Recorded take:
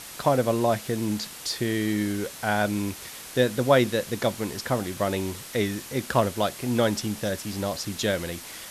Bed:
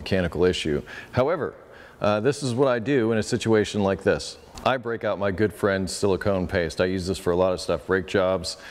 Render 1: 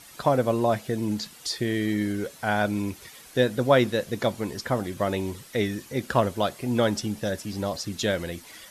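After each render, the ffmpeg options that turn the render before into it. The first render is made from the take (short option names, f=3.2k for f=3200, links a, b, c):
-af "afftdn=nr=10:nf=-41"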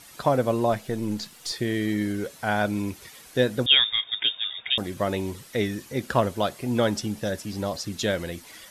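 -filter_complex "[0:a]asettb=1/sr,asplit=3[a][b][c];[a]atrim=end=0.724[d];[b]atrim=start=0.72:end=1.52,asetpts=PTS-STARTPTS,afade=t=in:d=0.004:c=qsin,afade=t=out:st=0.796:d=0.004:c=qsin,aeval=exprs='if(lt(val(0),0),0.708*val(0),val(0))':c=same[e];[c]atrim=start=1.516[f];[d][e]acrossfade=d=0.004:c1=hsin:c2=qsin[g];[g][f]acrossfade=d=0.004:c1=qsin:c2=hsin,asettb=1/sr,asplit=3[h][i][j];[h]atrim=end=3.664[k];[i]atrim=start=3.66:end=4.78,asetpts=PTS-STARTPTS,afade=t=in:d=0.004:c=qsin,afade=t=out:st=1.116:d=0.004:c=qsin,lowpass=f=3.2k:t=q:w=0.5098,lowpass=f=3.2k:t=q:w=0.6013,lowpass=f=3.2k:t=q:w=0.9,lowpass=f=3.2k:t=q:w=2.563,afreqshift=-3800[l];[j]atrim=start=4.776[m];[k][l]acrossfade=d=0.004:c1=hsin:c2=qsin[n];[n][m]acrossfade=d=0.004:c1=qsin:c2=hsin"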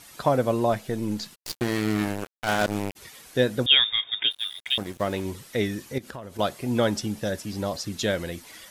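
-filter_complex "[0:a]asplit=3[a][b][c];[a]afade=t=out:st=1.34:d=0.02[d];[b]acrusher=bits=3:mix=0:aa=0.5,afade=t=in:st=1.34:d=0.02,afade=t=out:st=2.95:d=0.02[e];[c]afade=t=in:st=2.95:d=0.02[f];[d][e][f]amix=inputs=3:normalize=0,asplit=3[g][h][i];[g]afade=t=out:st=4.3:d=0.02[j];[h]aeval=exprs='sgn(val(0))*max(abs(val(0))-0.00891,0)':c=same,afade=t=in:st=4.3:d=0.02,afade=t=out:st=5.24:d=0.02[k];[i]afade=t=in:st=5.24:d=0.02[l];[j][k][l]amix=inputs=3:normalize=0,asettb=1/sr,asplit=3[m][n][o];[m]atrim=end=5.984[p];[n]atrim=start=5.98:end=6.39,asetpts=PTS-STARTPTS,afade=t=in:d=0.004:c=qsin,afade=t=out:st=0.406:d=0.004:c=qsin,acompressor=threshold=-36dB:ratio=5:attack=3.2:release=140:knee=1:detection=peak[q];[o]atrim=start=6.386[r];[p][q]acrossfade=d=0.004:c1=hsin:c2=qsin[s];[s][r]acrossfade=d=0.004:c1=qsin:c2=hsin"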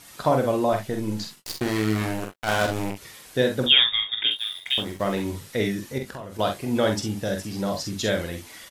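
-filter_complex "[0:a]asplit=2[a][b];[b]adelay=21,volume=-13dB[c];[a][c]amix=inputs=2:normalize=0,asplit=2[d][e];[e]aecho=0:1:46|66:0.531|0.266[f];[d][f]amix=inputs=2:normalize=0"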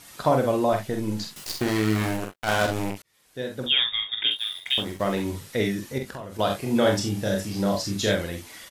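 -filter_complex "[0:a]asettb=1/sr,asplit=3[a][b][c];[a]atrim=end=1.364[d];[b]atrim=start=1.36:end=2.17,asetpts=PTS-STARTPTS,afade=t=in:d=0.004:c=qsin,afade=t=out:st=0.806:d=0.004:c=qsin,aeval=exprs='val(0)+0.5*0.0158*sgn(val(0))':c=same[e];[c]atrim=start=2.166[f];[d][e]acrossfade=d=0.004:c1=hsin:c2=qsin[g];[g][f]acrossfade=d=0.004:c1=qsin:c2=hsin,asettb=1/sr,asplit=3[h][i][j];[h]atrim=end=6.474[k];[i]atrim=start=6.47:end=8.15,asetpts=PTS-STARTPTS,afade=t=in:d=0.004:c=qsin,afade=t=out:st=1.676:d=0.004:c=qsin,asplit=2[l][m];[m]adelay=30,volume=-4dB[n];[l][n]amix=inputs=2:normalize=0,atrim=end_sample=74088[o];[j]atrim=start=8.146[p];[k][o]acrossfade=d=0.004:c1=hsin:c2=qsin[q];[q][p]acrossfade=d=0.004:c1=qsin:c2=hsin,asplit=2[r][s];[r]atrim=end=3.02,asetpts=PTS-STARTPTS,afade=t=out:st=3.016:d=0.004:c=hsin[t];[s]atrim=start=3.02,asetpts=PTS-STARTPTS,afade=t=in:d=1.35[u];[t][u]concat=n=2:v=0:a=1"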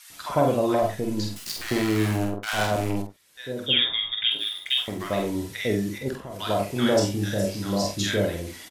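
-filter_complex "[0:a]asplit=2[a][b];[b]adelay=49,volume=-8dB[c];[a][c]amix=inputs=2:normalize=0,acrossover=split=1100[d][e];[d]adelay=100[f];[f][e]amix=inputs=2:normalize=0"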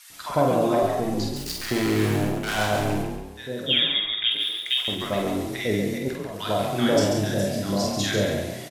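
-filter_complex "[0:a]asplit=6[a][b][c][d][e][f];[b]adelay=138,afreqshift=36,volume=-5.5dB[g];[c]adelay=276,afreqshift=72,volume=-13.5dB[h];[d]adelay=414,afreqshift=108,volume=-21.4dB[i];[e]adelay=552,afreqshift=144,volume=-29.4dB[j];[f]adelay=690,afreqshift=180,volume=-37.3dB[k];[a][g][h][i][j][k]amix=inputs=6:normalize=0"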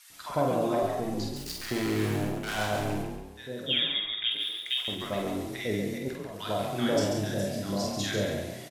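-af "volume=-6dB"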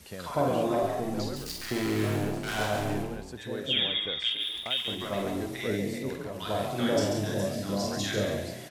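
-filter_complex "[1:a]volume=-18.5dB[a];[0:a][a]amix=inputs=2:normalize=0"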